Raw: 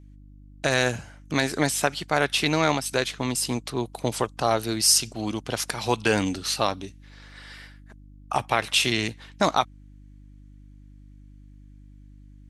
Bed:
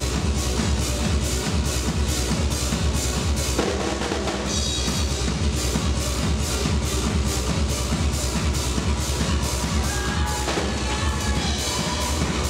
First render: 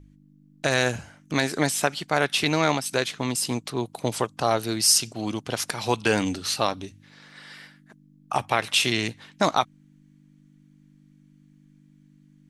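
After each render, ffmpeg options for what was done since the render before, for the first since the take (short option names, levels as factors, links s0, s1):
-af "bandreject=f=50:t=h:w=4,bandreject=f=100:t=h:w=4"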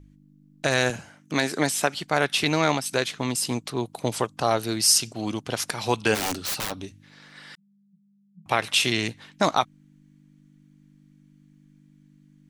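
-filter_complex "[0:a]asettb=1/sr,asplit=3[s0][s1][s2];[s0]atrim=end=0.904[s3];[s1]atrim=start=0.9:end=1.95,asetpts=PTS-STARTPTS,afade=t=in:d=0.004:c=qsin,afade=t=out:st=1.046:d=0.004:c=qsin,highpass=140[s4];[s2]atrim=start=1.946[s5];[s3][s4]acrossfade=d=0.004:c1=hsin:c2=qsin[s6];[s6][s5]acrossfade=d=0.004:c1=qsin:c2=hsin,asplit=3[s7][s8][s9];[s7]afade=t=out:st=6.14:d=0.02[s10];[s8]aeval=exprs='(mod(12.6*val(0)+1,2)-1)/12.6':c=same,afade=t=in:st=6.14:d=0.02,afade=t=out:st=6.7:d=0.02[s11];[s9]afade=t=in:st=6.7:d=0.02[s12];[s10][s11][s12]amix=inputs=3:normalize=0,asettb=1/sr,asplit=3[s13][s14][s15];[s13]atrim=end=7.554[s16];[s14]atrim=start=7.55:end=8.46,asetpts=PTS-STARTPTS,afade=t=in:d=0.004:c=qsin,afade=t=out:st=0.906:d=0.004:c=qsin,asuperpass=centerf=180:order=12:qfactor=4.3[s17];[s15]atrim=start=8.456[s18];[s16][s17]acrossfade=d=0.004:c1=hsin:c2=qsin[s19];[s19][s18]acrossfade=d=0.004:c1=qsin:c2=hsin"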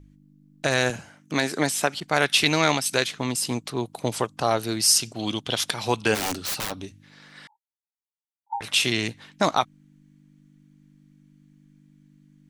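-filter_complex "[0:a]asettb=1/sr,asplit=3[s0][s1][s2];[s0]atrim=end=2.004[s3];[s1]atrim=start=2:end=3.07,asetpts=PTS-STARTPTS,afade=t=in:d=0.004:c=qsin,afade=t=out:st=1.066:d=0.004:c=qsin,adynamicequalizer=threshold=0.0224:dfrequency=1600:dqfactor=0.7:tfrequency=1600:tqfactor=0.7:attack=5:release=100:ratio=0.375:range=2.5:mode=boostabove:tftype=highshelf[s4];[s2]atrim=start=3.066[s5];[s3][s4]acrossfade=d=0.004:c1=hsin:c2=qsin[s6];[s6][s5]acrossfade=d=0.004:c1=qsin:c2=hsin,asettb=1/sr,asplit=3[s7][s8][s9];[s7]atrim=end=5.194[s10];[s8]atrim=start=5.19:end=5.74,asetpts=PTS-STARTPTS,afade=t=in:d=0.004:c=qsin,afade=t=out:st=0.546:d=0.004:c=qsin,equalizer=f=3400:w=3:g=13.5[s11];[s9]atrim=start=5.736[s12];[s10][s11]acrossfade=d=0.004:c1=hsin:c2=qsin[s13];[s13][s12]acrossfade=d=0.004:c1=qsin:c2=hsin,asettb=1/sr,asplit=3[s14][s15][s16];[s14]atrim=end=7.474[s17];[s15]atrim=start=7.47:end=8.61,asetpts=PTS-STARTPTS,afade=t=in:d=0.004:c=qsin,afade=t=out:st=1.136:d=0.004:c=qsin,asuperpass=centerf=870:order=12:qfactor=5.7[s18];[s16]atrim=start=8.606[s19];[s17][s18]acrossfade=d=0.004:c1=hsin:c2=qsin[s20];[s20][s19]acrossfade=d=0.004:c1=qsin:c2=hsin"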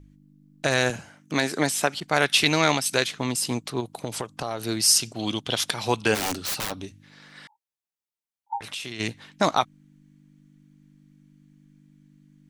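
-filter_complex "[0:a]asettb=1/sr,asplit=3[s0][s1][s2];[s0]atrim=end=3.804[s3];[s1]atrim=start=3.8:end=4.67,asetpts=PTS-STARTPTS,afade=t=in:d=0.004:c=qsin,afade=t=out:st=0.866:d=0.004:c=qsin,acompressor=threshold=0.0562:ratio=6:attack=3.2:release=140:knee=1:detection=peak[s4];[s2]atrim=start=4.666[s5];[s3][s4]acrossfade=d=0.004:c1=hsin:c2=qsin[s6];[s6][s5]acrossfade=d=0.004:c1=qsin:c2=hsin,asplit=3[s7][s8][s9];[s7]afade=t=out:st=8.57:d=0.02[s10];[s8]acompressor=threshold=0.0178:ratio=3:attack=3.2:release=140:knee=1:detection=peak,afade=t=in:st=8.57:d=0.02,afade=t=out:st=8.99:d=0.02[s11];[s9]afade=t=in:st=8.99:d=0.02[s12];[s10][s11][s12]amix=inputs=3:normalize=0"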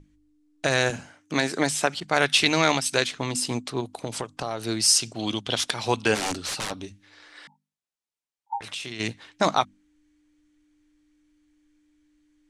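-af "lowpass=f=10000:w=0.5412,lowpass=f=10000:w=1.3066,bandreject=f=50:t=h:w=6,bandreject=f=100:t=h:w=6,bandreject=f=150:t=h:w=6,bandreject=f=200:t=h:w=6,bandreject=f=250:t=h:w=6"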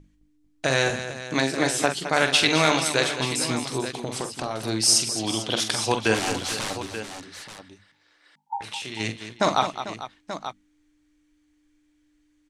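-af "aecho=1:1:45|213|445|883:0.398|0.299|0.2|0.266"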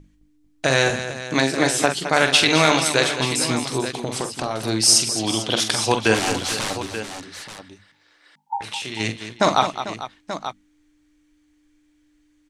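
-af "volume=1.58,alimiter=limit=0.891:level=0:latency=1"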